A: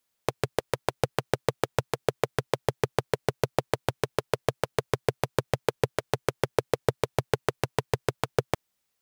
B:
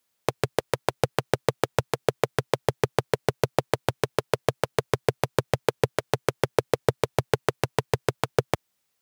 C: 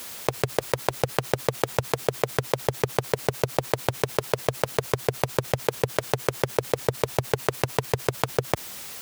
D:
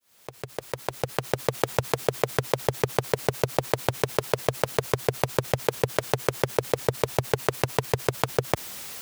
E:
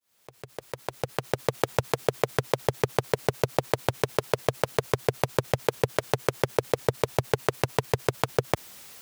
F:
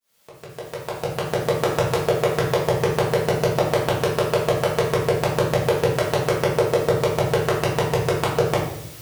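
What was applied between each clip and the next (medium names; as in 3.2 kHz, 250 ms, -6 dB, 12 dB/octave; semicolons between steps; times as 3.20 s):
high-pass 64 Hz; trim +3 dB
level flattener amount 70%; trim -3 dB
fade-in on the opening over 1.64 s
upward expansion 1.5:1, over -37 dBFS
simulated room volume 150 m³, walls mixed, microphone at 1.6 m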